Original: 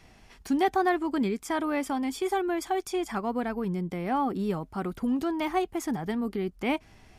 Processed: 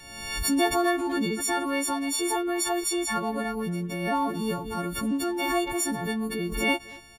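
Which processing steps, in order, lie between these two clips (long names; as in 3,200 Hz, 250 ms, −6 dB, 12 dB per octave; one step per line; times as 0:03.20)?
every partial snapped to a pitch grid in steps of 4 semitones
far-end echo of a speakerphone 230 ms, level −18 dB
background raised ahead of every attack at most 50 dB per second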